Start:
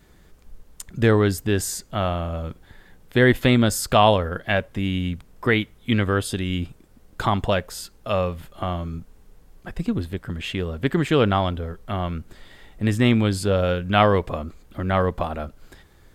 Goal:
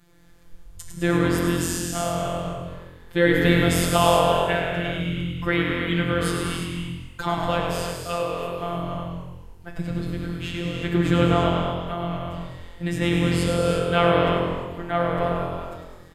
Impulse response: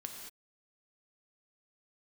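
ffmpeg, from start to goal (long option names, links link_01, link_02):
-filter_complex "[0:a]flanger=delay=6.6:depth=8.6:regen=-74:speed=0.26:shape=sinusoidal[link_01];[1:a]atrim=start_sample=2205,asetrate=28224,aresample=44100[link_02];[link_01][link_02]afir=irnorm=-1:irlink=0,afftfilt=real='hypot(re,im)*cos(PI*b)':imag='0':win_size=1024:overlap=0.75,asplit=8[link_03][link_04][link_05][link_06][link_07][link_08][link_09][link_10];[link_04]adelay=103,afreqshift=-44,volume=-7dB[link_11];[link_05]adelay=206,afreqshift=-88,volume=-11.7dB[link_12];[link_06]adelay=309,afreqshift=-132,volume=-16.5dB[link_13];[link_07]adelay=412,afreqshift=-176,volume=-21.2dB[link_14];[link_08]adelay=515,afreqshift=-220,volume=-25.9dB[link_15];[link_09]adelay=618,afreqshift=-264,volume=-30.7dB[link_16];[link_10]adelay=721,afreqshift=-308,volume=-35.4dB[link_17];[link_03][link_11][link_12][link_13][link_14][link_15][link_16][link_17]amix=inputs=8:normalize=0,volume=6dB"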